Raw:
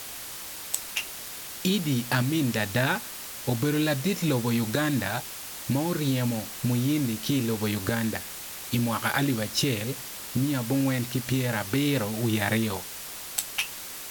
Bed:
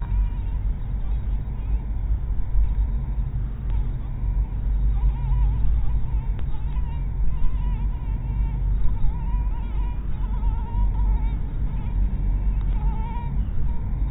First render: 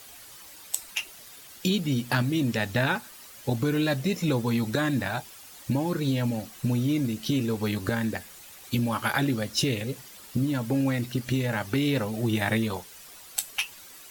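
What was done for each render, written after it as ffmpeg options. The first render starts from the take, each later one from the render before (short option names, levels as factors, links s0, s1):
-af "afftdn=nr=11:nf=-39"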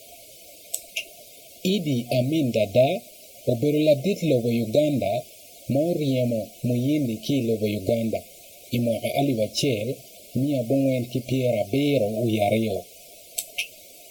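-af "afftfilt=real='re*(1-between(b*sr/4096,720,2100))':imag='im*(1-between(b*sr/4096,720,2100))':win_size=4096:overlap=0.75,equalizer=f=670:t=o:w=1.2:g=14"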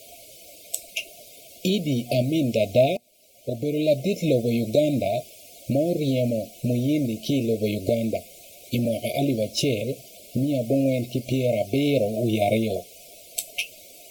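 -filter_complex "[0:a]asettb=1/sr,asplit=3[s0][s1][s2];[s0]atrim=end=8.854[s3];[s1]atrim=start=8.85:end=9.82,asetpts=PTS-STARTPTS,afade=t=in:d=0.004:c=qsin,afade=t=out:st=0.966:d=0.004:c=qsin,acrossover=split=490|3000[s4][s5][s6];[s5]acompressor=threshold=0.0501:ratio=4:attack=3.2:release=140:knee=2.83:detection=peak[s7];[s4][s7][s6]amix=inputs=3:normalize=0[s8];[s2]atrim=start=9.816[s9];[s3][s8]acrossfade=d=0.004:c1=hsin:c2=qsin[s10];[s10][s9]acrossfade=d=0.004:c1=qsin:c2=hsin,asplit=2[s11][s12];[s11]atrim=end=2.97,asetpts=PTS-STARTPTS,afade=t=out:st=2.966:d=0.004:c=hsin:silence=0.0944061[s13];[s12]atrim=start=2.97,asetpts=PTS-STARTPTS,afade=t=in:d=1.23:silence=0.0944061[s14];[s13][s14]concat=n=2:v=0:a=1"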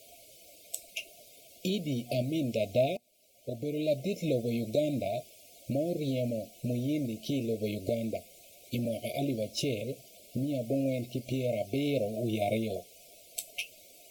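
-af "volume=0.376"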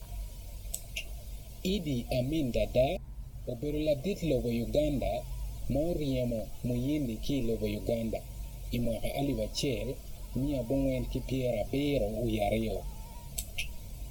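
-filter_complex "[1:a]volume=0.126[s0];[0:a][s0]amix=inputs=2:normalize=0"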